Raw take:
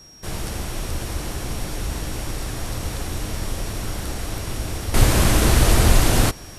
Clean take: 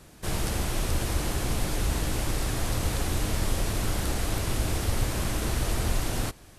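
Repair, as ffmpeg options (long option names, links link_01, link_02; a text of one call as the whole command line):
ffmpeg -i in.wav -af "bandreject=frequency=5600:width=30,asetnsamples=nb_out_samples=441:pad=0,asendcmd='4.94 volume volume -12dB',volume=0dB" out.wav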